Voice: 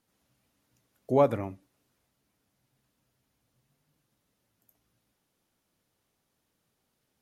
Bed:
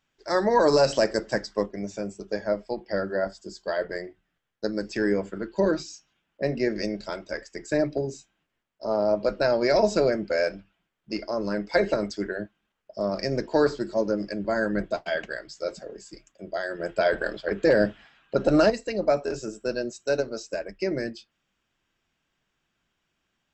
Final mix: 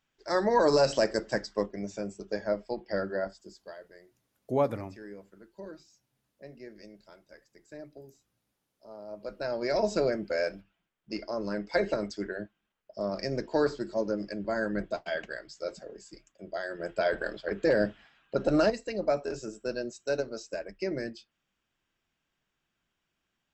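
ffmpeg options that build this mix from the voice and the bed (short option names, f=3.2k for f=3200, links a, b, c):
-filter_complex "[0:a]adelay=3400,volume=-4dB[a];[1:a]volume=12.5dB,afade=t=out:st=3.04:d=0.76:silence=0.133352,afade=t=in:st=9.07:d=0.91:silence=0.158489[b];[a][b]amix=inputs=2:normalize=0"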